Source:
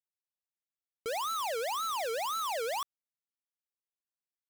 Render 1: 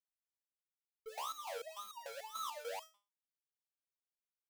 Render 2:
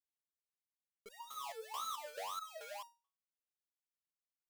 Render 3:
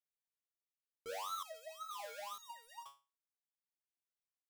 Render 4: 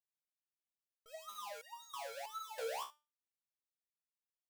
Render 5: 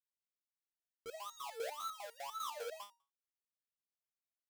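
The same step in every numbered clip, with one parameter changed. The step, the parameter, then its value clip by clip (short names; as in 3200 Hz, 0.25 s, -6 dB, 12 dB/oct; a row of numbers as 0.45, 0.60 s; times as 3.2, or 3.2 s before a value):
stepped resonator, rate: 6.8, 4.6, 2.1, 3.1, 10 Hz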